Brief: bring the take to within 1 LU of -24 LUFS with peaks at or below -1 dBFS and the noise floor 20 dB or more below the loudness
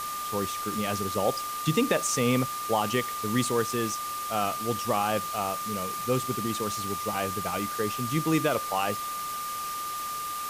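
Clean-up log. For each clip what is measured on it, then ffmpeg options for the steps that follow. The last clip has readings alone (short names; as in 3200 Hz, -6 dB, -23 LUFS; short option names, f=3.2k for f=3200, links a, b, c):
steady tone 1200 Hz; tone level -32 dBFS; noise floor -34 dBFS; noise floor target -49 dBFS; loudness -28.5 LUFS; peak -12.0 dBFS; loudness target -24.0 LUFS
-> -af "bandreject=f=1.2k:w=30"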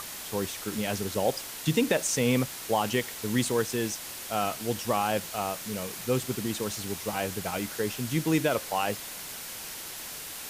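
steady tone none; noise floor -40 dBFS; noise floor target -50 dBFS
-> -af "afftdn=nr=10:nf=-40"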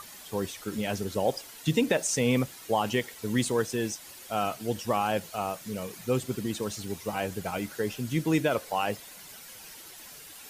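noise floor -47 dBFS; noise floor target -50 dBFS
-> -af "afftdn=nr=6:nf=-47"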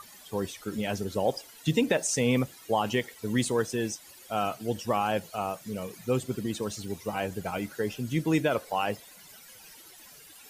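noise floor -51 dBFS; loudness -30.0 LUFS; peak -12.5 dBFS; loudness target -24.0 LUFS
-> -af "volume=6dB"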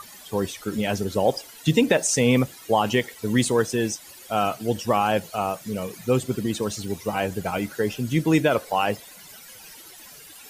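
loudness -24.0 LUFS; peak -6.5 dBFS; noise floor -45 dBFS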